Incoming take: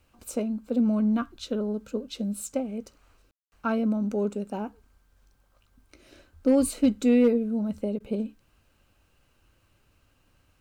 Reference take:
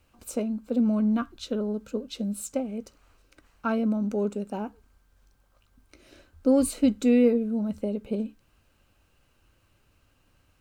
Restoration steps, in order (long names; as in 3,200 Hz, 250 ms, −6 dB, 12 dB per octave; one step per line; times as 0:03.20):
clipped peaks rebuilt −13.5 dBFS
ambience match 0:03.31–0:03.52
repair the gap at 0:03.50/0:07.99, 10 ms